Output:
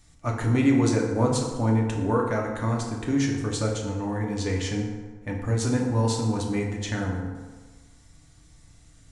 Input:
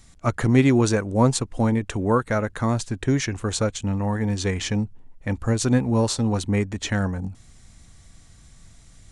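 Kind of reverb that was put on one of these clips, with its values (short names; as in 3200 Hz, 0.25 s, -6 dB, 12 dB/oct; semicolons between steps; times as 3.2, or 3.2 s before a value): FDN reverb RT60 1.4 s, low-frequency decay 0.9×, high-frequency decay 0.55×, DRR -1 dB; gain -7 dB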